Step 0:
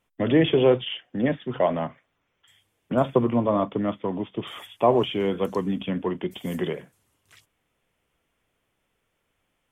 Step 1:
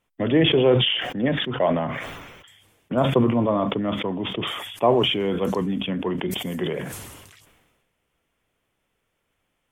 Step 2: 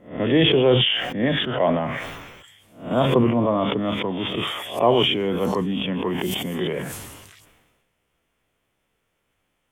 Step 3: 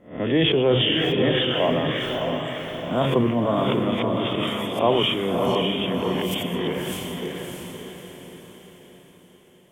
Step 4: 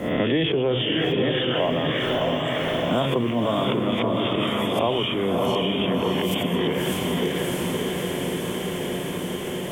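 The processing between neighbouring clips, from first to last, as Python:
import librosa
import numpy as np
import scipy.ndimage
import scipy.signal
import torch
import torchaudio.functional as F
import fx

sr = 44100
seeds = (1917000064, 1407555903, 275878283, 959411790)

y1 = fx.sustainer(x, sr, db_per_s=40.0)
y2 = fx.spec_swells(y1, sr, rise_s=0.39)
y3 = fx.echo_diffused(y2, sr, ms=611, feedback_pct=46, wet_db=-3.5)
y3 = F.gain(torch.from_numpy(y3), -2.5).numpy()
y4 = fx.band_squash(y3, sr, depth_pct=100)
y4 = F.gain(torch.from_numpy(y4), -1.0).numpy()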